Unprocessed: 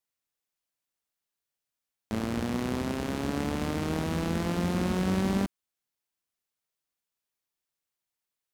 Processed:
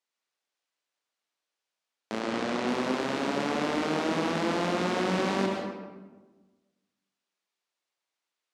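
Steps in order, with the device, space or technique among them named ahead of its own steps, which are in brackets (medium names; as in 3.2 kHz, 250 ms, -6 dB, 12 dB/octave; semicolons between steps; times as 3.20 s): supermarket ceiling speaker (band-pass 340–6100 Hz; reverberation RT60 1.3 s, pre-delay 98 ms, DRR 1.5 dB); 2.20–2.68 s: low-pass 9.2 kHz 12 dB/octave; trim +3.5 dB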